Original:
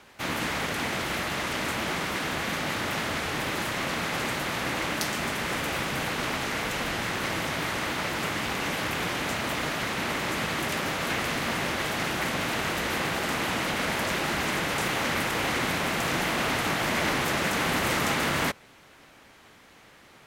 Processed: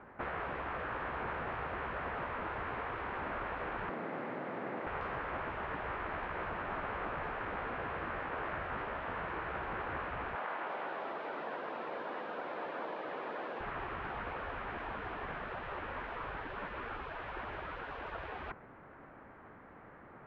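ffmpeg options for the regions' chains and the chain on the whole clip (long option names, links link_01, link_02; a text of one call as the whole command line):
ffmpeg -i in.wav -filter_complex "[0:a]asettb=1/sr,asplit=3[link_01][link_02][link_03];[link_01]atrim=end=3.894[link_04];[link_02]atrim=start=3.89:end=4.87,asetpts=PTS-STARTPTS,afade=type=in:duration=0.004:curve=qsin,afade=type=out:start_time=0.976:duration=0.004:curve=qsin,highpass=340,equalizer=frequency=1300:width_type=o:width=2.3:gain=-12.5[link_05];[link_03]atrim=start=4.866[link_06];[link_04][link_05]acrossfade=duration=0.004:curve1=hsin:curve2=qsin[link_07];[link_07][link_06]acrossfade=duration=0.004:curve1=qsin:curve2=hsin,asettb=1/sr,asplit=3[link_08][link_09][link_10];[link_08]atrim=end=10.354[link_11];[link_09]atrim=start=10.35:end=13.61,asetpts=PTS-STARTPTS,afade=type=in:duration=0.004:curve=qsin,afade=type=out:start_time=3.256:duration=0.004:curve=qsin,highpass=920,aecho=1:1:310|511.5|642.5|727.6|782.9:0.794|0.631|0.501|0.398|0.316,atrim=end_sample=143766[link_12];[link_10]atrim=start=13.606[link_13];[link_11][link_12]acrossfade=duration=0.004:curve1=hsin:curve2=qsin[link_14];[link_14][link_13]acrossfade=duration=0.004:curve1=qsin:curve2=hsin,afftfilt=real='re*lt(hypot(re,im),0.0631)':imag='im*lt(hypot(re,im),0.0631)':win_size=1024:overlap=0.75,lowpass=frequency=1600:width=0.5412,lowpass=frequency=1600:width=1.3066,volume=1.5dB" out.wav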